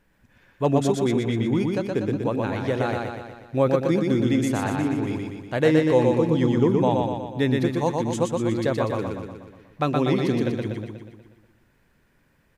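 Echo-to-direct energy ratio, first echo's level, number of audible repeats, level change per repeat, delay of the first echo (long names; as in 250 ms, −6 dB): −1.5 dB, −3.0 dB, 7, −5.0 dB, 121 ms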